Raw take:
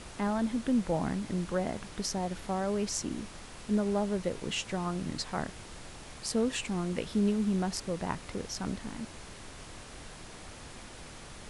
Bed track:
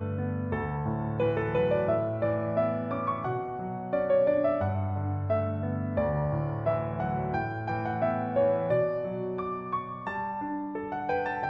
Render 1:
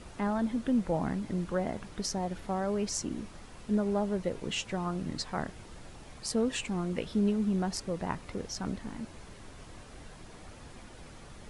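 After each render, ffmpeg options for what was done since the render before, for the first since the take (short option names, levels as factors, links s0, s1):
-af "afftdn=nr=7:nf=-48"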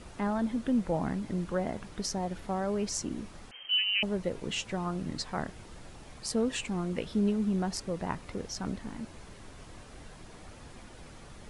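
-filter_complex "[0:a]asettb=1/sr,asplit=3[s0][s1][s2];[s0]atrim=end=3.514[s3];[s1]atrim=start=3.51:end=4.03,asetpts=PTS-STARTPTS,afade=t=in:d=0.004:c=qsin,afade=t=out:st=0.516:d=0.004:c=qsin,lowpass=f=2700:t=q:w=0.5098,lowpass=f=2700:t=q:w=0.6013,lowpass=f=2700:t=q:w=0.9,lowpass=f=2700:t=q:w=2.563,afreqshift=-3200[s4];[s2]atrim=start=4.026[s5];[s3][s4]acrossfade=d=0.004:c1=hsin:c2=qsin[s6];[s6][s5]acrossfade=d=0.004:c1=qsin:c2=hsin"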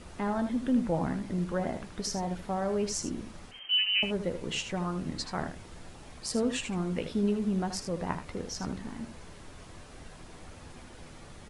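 -filter_complex "[0:a]asplit=2[s0][s1];[s1]adelay=12,volume=0.237[s2];[s0][s2]amix=inputs=2:normalize=0,asplit=2[s3][s4];[s4]aecho=0:1:78:0.335[s5];[s3][s5]amix=inputs=2:normalize=0"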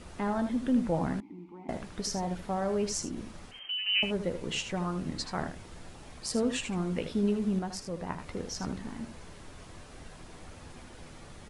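-filter_complex "[0:a]asettb=1/sr,asplit=3[s0][s1][s2];[s0]atrim=end=1.204[s3];[s1]atrim=start=1.2:end=1.69,asetpts=PTS-STARTPTS,afade=t=in:d=0.004:c=qsin,afade=t=out:st=0.486:d=0.004:c=qsin,asplit=3[s4][s5][s6];[s4]bandpass=f=300:t=q:w=8,volume=1[s7];[s5]bandpass=f=870:t=q:w=8,volume=0.501[s8];[s6]bandpass=f=2240:t=q:w=8,volume=0.355[s9];[s7][s8][s9]amix=inputs=3:normalize=0[s10];[s2]atrim=start=1.686[s11];[s3][s10]acrossfade=d=0.004:c1=hsin:c2=qsin[s12];[s12][s11]acrossfade=d=0.004:c1=qsin:c2=hsin,asettb=1/sr,asplit=3[s13][s14][s15];[s13]atrim=end=3.024[s16];[s14]atrim=start=3.02:end=3.86,asetpts=PTS-STARTPTS,afade=t=in:d=0.004:c=qsin,afade=t=out:st=0.836:d=0.004:c=qsin,acompressor=threshold=0.0282:ratio=6:attack=3.2:release=140:knee=1:detection=peak[s17];[s15]atrim=start=3.856[s18];[s16][s17]acrossfade=d=0.004:c1=hsin:c2=qsin[s19];[s19][s18]acrossfade=d=0.004:c1=qsin:c2=hsin,asplit=3[s20][s21][s22];[s20]atrim=end=7.592[s23];[s21]atrim=start=7.588:end=8.192,asetpts=PTS-STARTPTS,volume=0.668[s24];[s22]atrim=start=8.188[s25];[s23][s24]acrossfade=d=0.004:c1=hsin:c2=hsin[s26];[s26][s25]acrossfade=d=0.004:c1=hsin:c2=hsin"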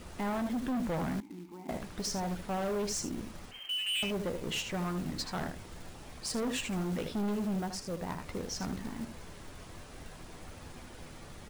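-af "volume=31.6,asoftclip=hard,volume=0.0316,acrusher=bits=4:mode=log:mix=0:aa=0.000001"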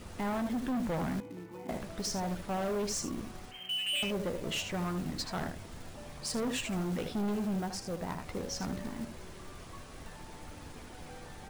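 -filter_complex "[1:a]volume=0.0668[s0];[0:a][s0]amix=inputs=2:normalize=0"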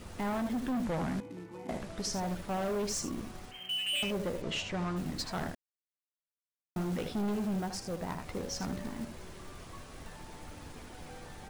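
-filter_complex "[0:a]asettb=1/sr,asplit=3[s0][s1][s2];[s0]atrim=end=0.844[s3];[s1]atrim=start=0.84:end=2.13,asetpts=PTS-STARTPTS,afade=t=in:d=0.004:c=qsin,afade=t=out:st=1.286:d=0.004:c=qsin,lowpass=11000[s4];[s2]atrim=start=2.126[s5];[s3][s4]acrossfade=d=0.004:c1=hsin:c2=qsin[s6];[s6][s5]acrossfade=d=0.004:c1=qsin:c2=hsin,asplit=3[s7][s8][s9];[s7]afade=t=out:st=4.41:d=0.02[s10];[s8]lowpass=6000,afade=t=in:st=4.41:d=0.02,afade=t=out:st=4.95:d=0.02[s11];[s9]afade=t=in:st=4.95:d=0.02[s12];[s10][s11][s12]amix=inputs=3:normalize=0,asplit=3[s13][s14][s15];[s13]atrim=end=5.55,asetpts=PTS-STARTPTS,afade=t=out:st=5.546:d=0.004:c=hsin[s16];[s14]atrim=start=5.55:end=6.76,asetpts=PTS-STARTPTS,volume=0[s17];[s15]atrim=start=6.76,asetpts=PTS-STARTPTS,afade=t=in:d=0.004:c=hsin[s18];[s16][s17][s18]concat=n=3:v=0:a=1"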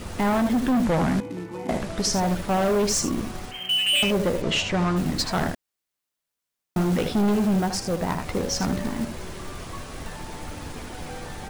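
-af "volume=3.76"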